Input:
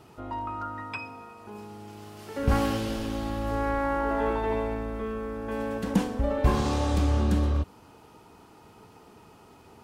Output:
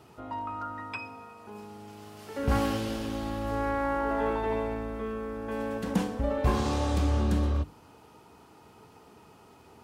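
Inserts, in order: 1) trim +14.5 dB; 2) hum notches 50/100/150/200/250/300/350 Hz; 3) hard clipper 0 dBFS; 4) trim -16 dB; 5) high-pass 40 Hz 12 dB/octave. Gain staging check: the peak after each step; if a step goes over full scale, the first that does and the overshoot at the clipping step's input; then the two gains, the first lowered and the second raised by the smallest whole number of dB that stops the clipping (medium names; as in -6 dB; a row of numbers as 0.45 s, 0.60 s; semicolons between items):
+6.0 dBFS, +5.0 dBFS, 0.0 dBFS, -16.0 dBFS, -13.0 dBFS; step 1, 5.0 dB; step 1 +9.5 dB, step 4 -11 dB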